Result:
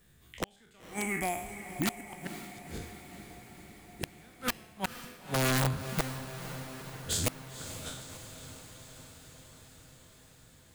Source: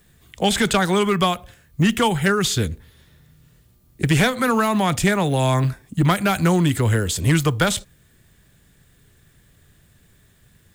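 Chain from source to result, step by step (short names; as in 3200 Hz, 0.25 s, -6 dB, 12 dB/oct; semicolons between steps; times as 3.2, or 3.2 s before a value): spectral trails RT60 0.64 s; 0.8–2.13 EQ curve 100 Hz 0 dB, 170 Hz -12 dB, 290 Hz +7 dB, 460 Hz -19 dB, 790 Hz +4 dB, 1100 Hz -21 dB, 2200 Hz +5 dB, 3400 Hz -23 dB, 8700 Hz +7 dB, 14000 Hz +6 dB; flipped gate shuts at -9 dBFS, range -36 dB; wrapped overs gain 12.5 dB; diffused feedback echo 0.511 s, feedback 69%, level -11 dB; gain -9 dB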